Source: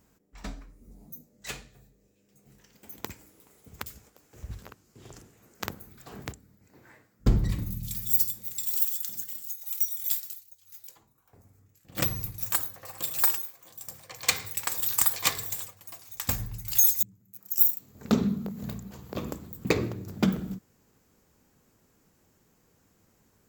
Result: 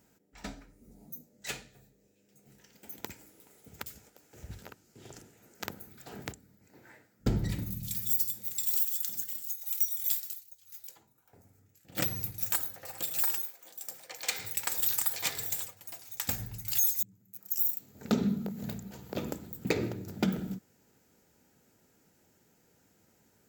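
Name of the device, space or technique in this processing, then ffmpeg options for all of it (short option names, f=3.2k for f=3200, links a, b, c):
PA system with an anti-feedback notch: -filter_complex "[0:a]highpass=f=130:p=1,asuperstop=centerf=1100:order=4:qfactor=5.7,alimiter=limit=-15dB:level=0:latency=1:release=157,asettb=1/sr,asplit=3[a][b][c];[a]atrim=end=13.414[d];[b]atrim=start=13.41:end=14.39,asetpts=PTS-STARTPTS,afade=t=in:d=0.004:c=qsin,afade=t=out:st=0.976:d=0.004:c=qsin,highpass=270[e];[c]atrim=start=14.386[f];[d][e]acrossfade=d=0.004:c1=hsin:c2=qsin[g];[g][f]acrossfade=d=0.004:c1=qsin:c2=hsin"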